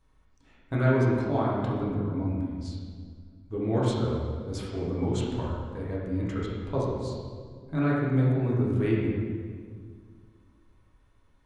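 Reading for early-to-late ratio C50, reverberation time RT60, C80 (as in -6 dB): -1.0 dB, 1.9 s, 1.0 dB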